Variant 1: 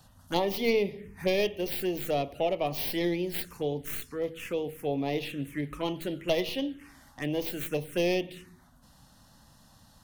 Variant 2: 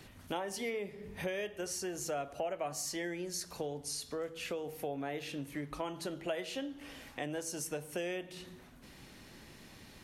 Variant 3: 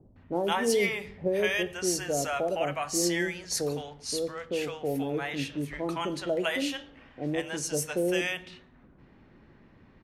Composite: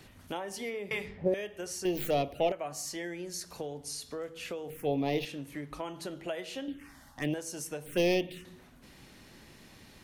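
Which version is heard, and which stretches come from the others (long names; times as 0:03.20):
2
0:00.91–0:01.34: punch in from 3
0:01.85–0:02.52: punch in from 1
0:04.70–0:05.25: punch in from 1
0:06.68–0:07.34: punch in from 1
0:07.86–0:08.45: punch in from 1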